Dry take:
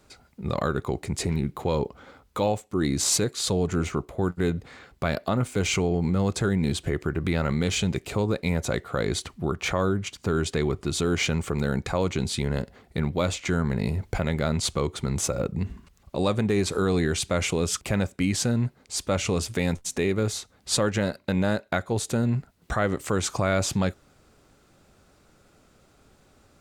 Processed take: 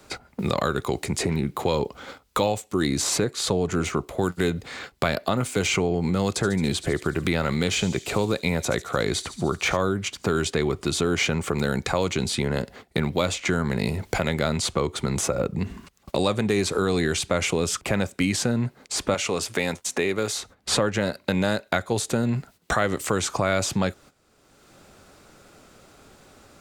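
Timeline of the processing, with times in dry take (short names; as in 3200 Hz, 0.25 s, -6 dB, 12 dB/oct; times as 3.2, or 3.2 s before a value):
6.31–9.77 thin delay 72 ms, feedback 60%, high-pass 4300 Hz, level -10.5 dB
19.14–20.39 HPF 420 Hz 6 dB/oct
whole clip: gate -48 dBFS, range -15 dB; low shelf 180 Hz -7 dB; three-band squash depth 70%; gain +3 dB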